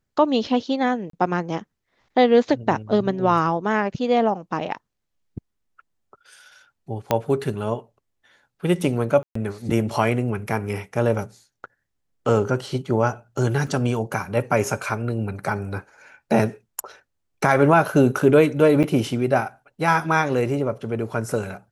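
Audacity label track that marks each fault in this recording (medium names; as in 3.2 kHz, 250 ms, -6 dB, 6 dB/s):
1.100000	1.130000	dropout 33 ms
7.110000	7.110000	pop -6 dBFS
9.230000	9.350000	dropout 124 ms
13.670000	13.670000	dropout 2.1 ms
18.830000	18.840000	dropout 7.4 ms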